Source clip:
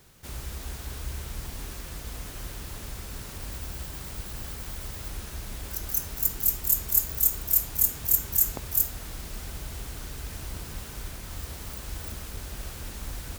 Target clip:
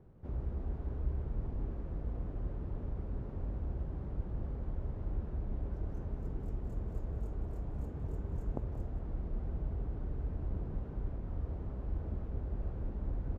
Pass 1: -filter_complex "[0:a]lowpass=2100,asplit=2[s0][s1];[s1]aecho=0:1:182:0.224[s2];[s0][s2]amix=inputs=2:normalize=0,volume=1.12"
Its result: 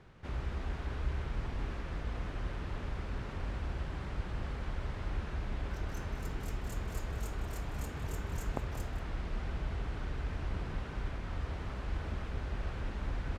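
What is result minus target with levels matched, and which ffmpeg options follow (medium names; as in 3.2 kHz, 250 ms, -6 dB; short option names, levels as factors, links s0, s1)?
2 kHz band +17.5 dB
-filter_complex "[0:a]lowpass=550,asplit=2[s0][s1];[s1]aecho=0:1:182:0.224[s2];[s0][s2]amix=inputs=2:normalize=0,volume=1.12"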